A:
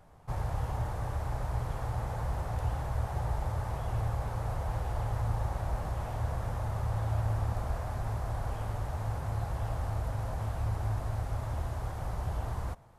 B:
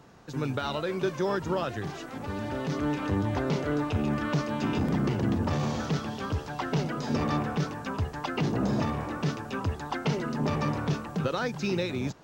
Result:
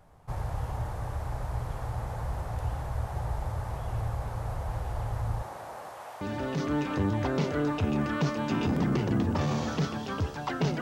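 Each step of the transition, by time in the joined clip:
A
0:05.41–0:06.21: high-pass filter 230 Hz → 700 Hz
0:06.21: continue with B from 0:02.33

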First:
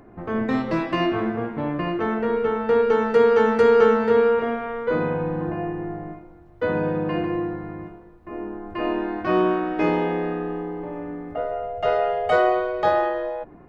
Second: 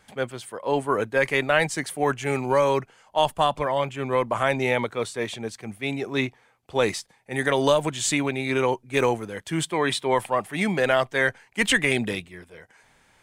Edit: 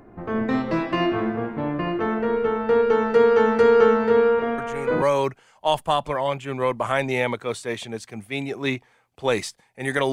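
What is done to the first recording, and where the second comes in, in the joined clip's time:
first
0:04.58: mix in second from 0:02.09 0.44 s −8.5 dB
0:05.02: continue with second from 0:02.53

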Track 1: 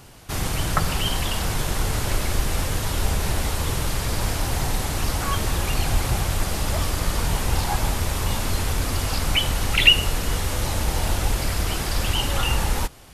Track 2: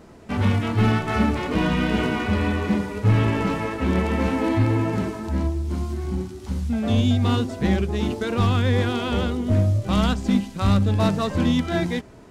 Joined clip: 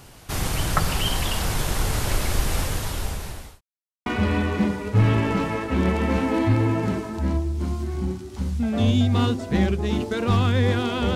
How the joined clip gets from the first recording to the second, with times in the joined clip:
track 1
0:02.57–0:03.61: fade out linear
0:03.61–0:04.06: silence
0:04.06: continue with track 2 from 0:02.16

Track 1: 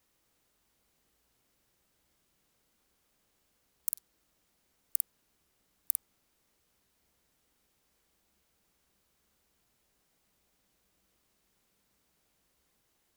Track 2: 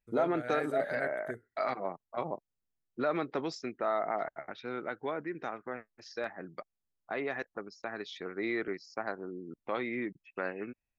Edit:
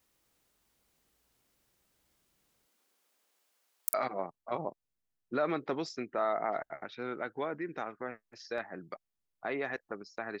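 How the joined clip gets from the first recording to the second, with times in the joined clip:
track 1
0:02.65–0:03.94: high-pass filter 250 Hz → 740 Hz
0:03.94: continue with track 2 from 0:01.60

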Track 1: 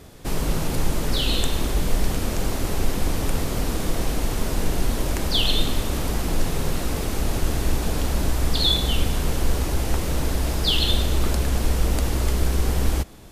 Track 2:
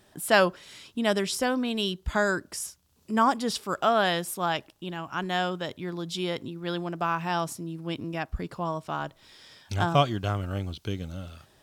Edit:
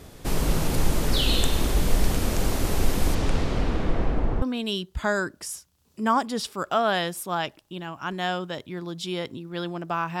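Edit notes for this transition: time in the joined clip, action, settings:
track 1
0:03.14–0:04.42: low-pass filter 6,600 Hz → 1,100 Hz
0:04.42: continue with track 2 from 0:01.53

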